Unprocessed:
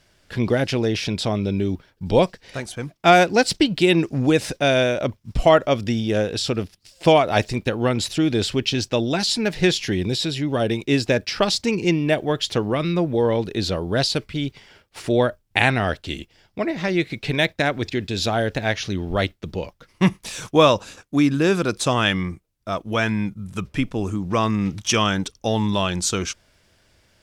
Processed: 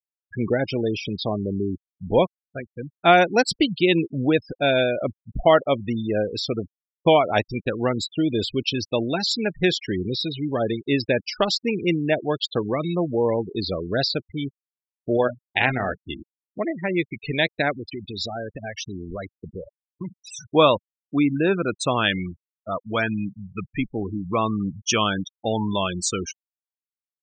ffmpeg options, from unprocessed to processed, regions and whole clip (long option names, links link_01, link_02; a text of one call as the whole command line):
ffmpeg -i in.wav -filter_complex "[0:a]asettb=1/sr,asplit=3[link_01][link_02][link_03];[link_01]atrim=end=15.174[link_04];[link_02]atrim=start=15.17:end=16.09,asetpts=PTS-STARTPTS,afade=type=in:duration=0.004:curve=qsin,afade=type=out:start_time=0.916:duration=0.004:curve=qsin,bandreject=frequency=60:width_type=h:width=6,bandreject=frequency=120:width_type=h:width=6,bandreject=frequency=180:width_type=h:width=6,bandreject=frequency=240:width_type=h:width=6,bandreject=frequency=300:width_type=h:width=6,bandreject=frequency=360:width_type=h:width=6,bandreject=frequency=420:width_type=h:width=6,tremolo=f=140:d=0.333,asplit=2[link_05][link_06];[link_06]adelay=16,volume=-10dB[link_07];[link_05][link_07]amix=inputs=2:normalize=0,atrim=end_sample=40572[link_08];[link_03]atrim=start=16.086[link_09];[link_04][link_08]acrossfade=duration=0.004:curve1=hsin:curve2=qsin[link_10];[link_10][link_09]acrossfade=duration=0.004:curve1=qsin:curve2=hsin,asettb=1/sr,asplit=3[link_11][link_12][link_13];[link_11]atrim=end=17.734[link_14];[link_12]atrim=start=17.73:end=20.51,asetpts=PTS-STARTPTS,afade=type=in:duration=0.004:curve=qsin,afade=type=out:start_time=2.776:duration=0.004:curve=qsin,acompressor=threshold=-25dB:ratio=4:attack=3.2:release=140:knee=1:detection=peak,aemphasis=mode=production:type=cd[link_15];[link_13]atrim=start=20.506[link_16];[link_14][link_15]acrossfade=duration=0.004:curve1=hsin:curve2=qsin[link_17];[link_17][link_16]acrossfade=duration=0.004:curve1=qsin:curve2=hsin,afftfilt=real='re*gte(hypot(re,im),0.0891)':imag='im*gte(hypot(re,im),0.0891)':win_size=1024:overlap=0.75,lowshelf=frequency=140:gain=-7,volume=-1dB" out.wav